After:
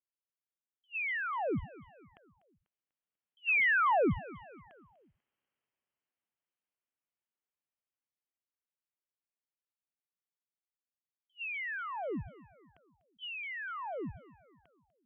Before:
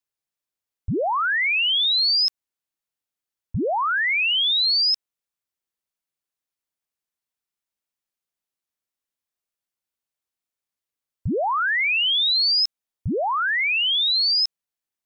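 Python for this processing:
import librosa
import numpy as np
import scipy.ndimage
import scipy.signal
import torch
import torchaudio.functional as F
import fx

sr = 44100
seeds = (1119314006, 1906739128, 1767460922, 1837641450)

p1 = fx.doppler_pass(x, sr, speed_mps=17, closest_m=7.5, pass_at_s=4.97)
p2 = 10.0 ** (-32.0 / 20.0) * np.tanh(p1 / 10.0 ** (-32.0 / 20.0))
p3 = p1 + (p2 * librosa.db_to_amplitude(-6.5))
p4 = fx.over_compress(p3, sr, threshold_db=-28.0, ratio=-0.5)
p5 = fx.dynamic_eq(p4, sr, hz=2000.0, q=1.6, threshold_db=-40.0, ratio=4.0, max_db=-3)
p6 = fx.freq_invert(p5, sr, carrier_hz=3200)
p7 = fx.highpass(p6, sr, hz=200.0, slope=6)
p8 = fx.low_shelf(p7, sr, hz=420.0, db=6.0)
p9 = p8 + fx.echo_feedback(p8, sr, ms=246, feedback_pct=46, wet_db=-19.5, dry=0)
p10 = fx.attack_slew(p9, sr, db_per_s=520.0)
y = p10 * librosa.db_to_amplitude(1.0)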